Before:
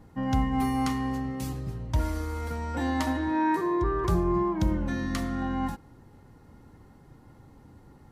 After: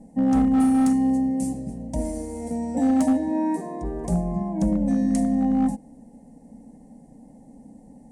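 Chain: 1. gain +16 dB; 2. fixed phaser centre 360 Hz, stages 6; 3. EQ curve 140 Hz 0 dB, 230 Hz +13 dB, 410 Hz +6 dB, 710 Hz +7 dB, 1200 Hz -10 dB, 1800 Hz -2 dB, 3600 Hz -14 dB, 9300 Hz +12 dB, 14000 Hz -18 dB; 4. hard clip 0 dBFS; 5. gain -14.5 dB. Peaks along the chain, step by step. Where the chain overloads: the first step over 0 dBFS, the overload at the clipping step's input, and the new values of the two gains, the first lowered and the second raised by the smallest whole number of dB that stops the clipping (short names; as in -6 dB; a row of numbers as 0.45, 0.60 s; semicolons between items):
+2.5, -1.0, +6.0, 0.0, -14.5 dBFS; step 1, 6.0 dB; step 1 +10 dB, step 5 -8.5 dB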